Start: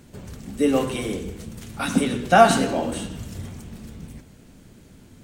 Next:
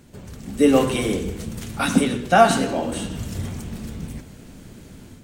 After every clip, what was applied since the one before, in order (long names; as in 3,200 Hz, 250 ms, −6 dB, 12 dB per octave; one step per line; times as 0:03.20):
automatic gain control gain up to 7.5 dB
level −1 dB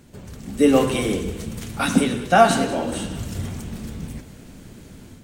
feedback echo with a high-pass in the loop 191 ms, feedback 55%, level −16.5 dB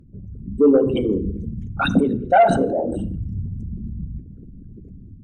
spectral envelope exaggerated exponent 3
in parallel at −3 dB: sine wavefolder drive 4 dB, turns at −3 dBFS
on the sum: convolution reverb RT60 0.55 s, pre-delay 5 ms, DRR 16.5 dB
level −6.5 dB